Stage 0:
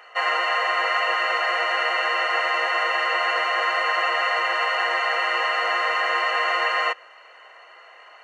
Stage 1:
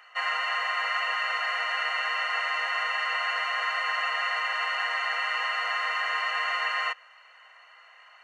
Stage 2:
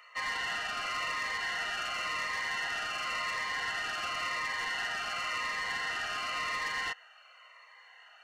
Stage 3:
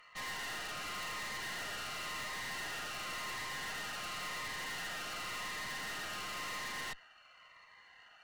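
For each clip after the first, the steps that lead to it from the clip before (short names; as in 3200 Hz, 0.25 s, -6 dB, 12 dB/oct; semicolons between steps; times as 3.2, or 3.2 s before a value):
HPF 990 Hz 12 dB/oct; gain -4.5 dB
soft clip -27.5 dBFS, distortion -12 dB; cascading phaser falling 0.93 Hz
added harmonics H 2 -7 dB, 6 -14 dB, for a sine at -25 dBFS; soft clip -34 dBFS, distortion -9 dB; gain -4 dB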